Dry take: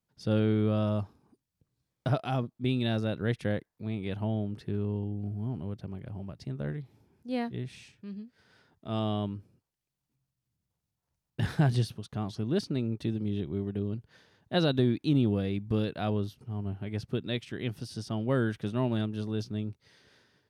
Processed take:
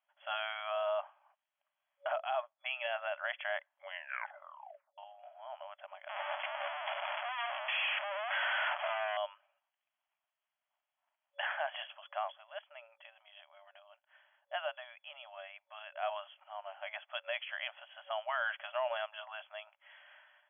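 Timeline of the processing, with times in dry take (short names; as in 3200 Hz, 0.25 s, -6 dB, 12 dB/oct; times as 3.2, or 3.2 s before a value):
2.16–2.99 three-band expander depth 100%
3.71 tape stop 1.27 s
6.09–9.17 infinite clipping
12.32–16.03 gain -9.5 dB
whole clip: FFT band-pass 570–3400 Hz; limiter -31.5 dBFS; gain +6.5 dB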